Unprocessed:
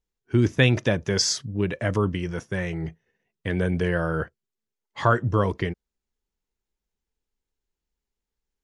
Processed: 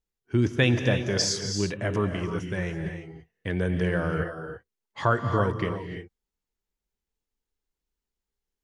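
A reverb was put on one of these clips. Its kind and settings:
reverb whose tail is shaped and stops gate 360 ms rising, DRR 6 dB
level −3 dB

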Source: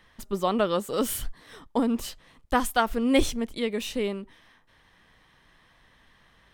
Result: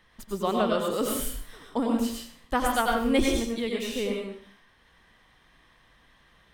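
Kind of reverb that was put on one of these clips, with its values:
dense smooth reverb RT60 0.52 s, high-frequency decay 0.95×, pre-delay 80 ms, DRR 0 dB
level −3 dB

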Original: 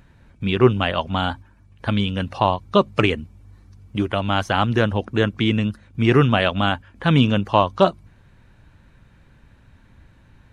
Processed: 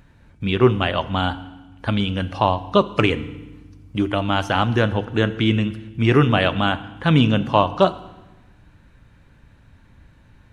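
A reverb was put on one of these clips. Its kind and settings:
feedback delay network reverb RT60 1.1 s, low-frequency decay 1.6×, high-frequency decay 0.95×, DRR 12.5 dB

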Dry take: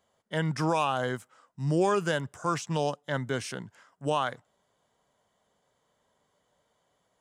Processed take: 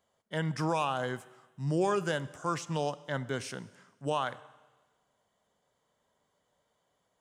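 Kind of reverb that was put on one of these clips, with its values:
four-comb reverb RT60 1.3 s, combs from 29 ms, DRR 17 dB
level −3.5 dB

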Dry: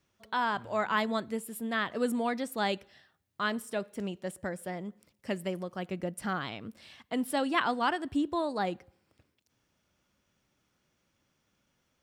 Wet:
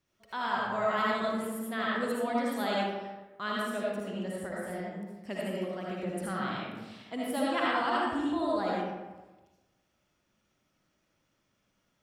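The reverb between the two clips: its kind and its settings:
comb and all-pass reverb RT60 1.2 s, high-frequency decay 0.55×, pre-delay 35 ms, DRR −5.5 dB
level −6 dB

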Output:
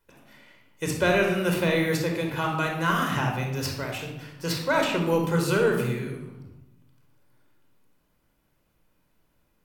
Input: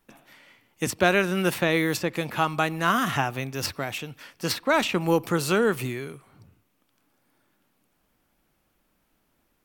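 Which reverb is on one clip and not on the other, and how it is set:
rectangular room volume 3,300 cubic metres, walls furnished, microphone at 4.9 metres
level −5.5 dB

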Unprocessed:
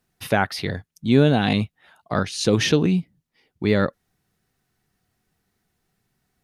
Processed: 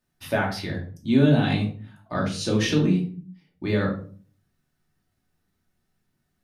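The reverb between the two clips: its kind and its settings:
rectangular room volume 340 cubic metres, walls furnished, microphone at 2.6 metres
level −8.5 dB

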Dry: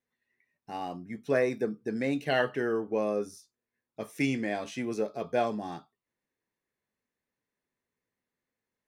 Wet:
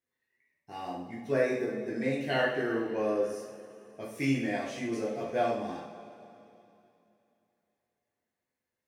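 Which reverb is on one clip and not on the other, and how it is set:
coupled-rooms reverb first 0.56 s, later 3 s, from −15 dB, DRR −5.5 dB
level −7 dB

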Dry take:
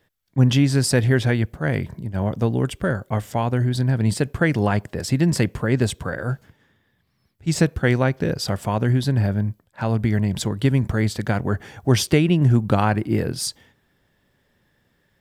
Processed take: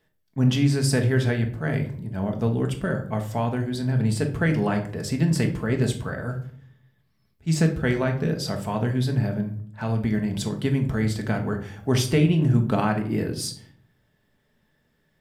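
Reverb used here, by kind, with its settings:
rectangular room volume 630 cubic metres, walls furnished, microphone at 1.5 metres
level −5.5 dB

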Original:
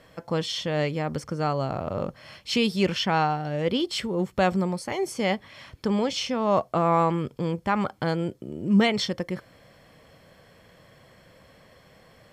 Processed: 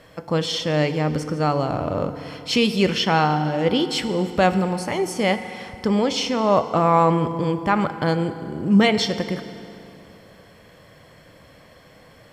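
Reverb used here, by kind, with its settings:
feedback delay network reverb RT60 2.9 s, high-frequency decay 0.7×, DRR 9.5 dB
level +4.5 dB

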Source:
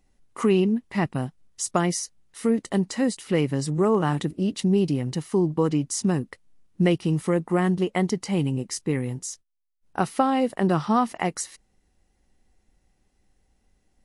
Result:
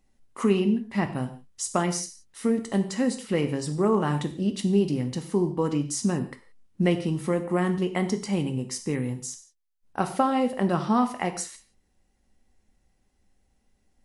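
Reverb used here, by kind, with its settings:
reverb whose tail is shaped and stops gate 200 ms falling, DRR 7 dB
level −2.5 dB

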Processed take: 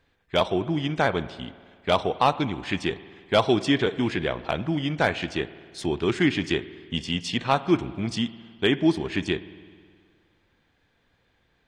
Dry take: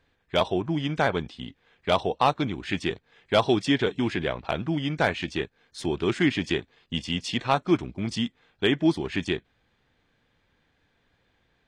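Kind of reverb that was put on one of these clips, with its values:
spring reverb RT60 1.9 s, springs 52 ms, chirp 25 ms, DRR 15.5 dB
level +1 dB

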